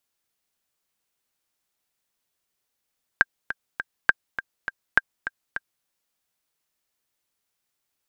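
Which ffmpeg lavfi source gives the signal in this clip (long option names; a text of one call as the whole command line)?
ffmpeg -f lavfi -i "aevalsrc='pow(10,(-2-12.5*gte(mod(t,3*60/204),60/204))/20)*sin(2*PI*1590*mod(t,60/204))*exp(-6.91*mod(t,60/204)/0.03)':duration=2.64:sample_rate=44100" out.wav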